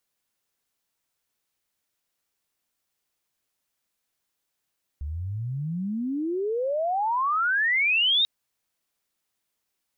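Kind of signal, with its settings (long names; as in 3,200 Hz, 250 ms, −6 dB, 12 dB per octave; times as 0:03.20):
glide logarithmic 69 Hz → 3,800 Hz −29 dBFS → −18 dBFS 3.24 s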